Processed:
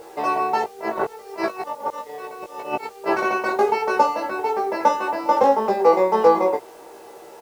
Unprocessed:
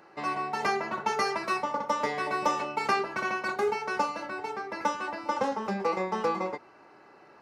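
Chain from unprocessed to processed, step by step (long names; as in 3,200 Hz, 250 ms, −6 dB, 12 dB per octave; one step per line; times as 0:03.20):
high-pass filter 89 Hz 12 dB per octave
flat-topped bell 570 Hz +9 dB
0:00.64–0:03.17: compressor whose output falls as the input rises −33 dBFS, ratio −0.5
steady tone 470 Hz −40 dBFS
bit reduction 9 bits
double-tracking delay 18 ms −3 dB
level +2.5 dB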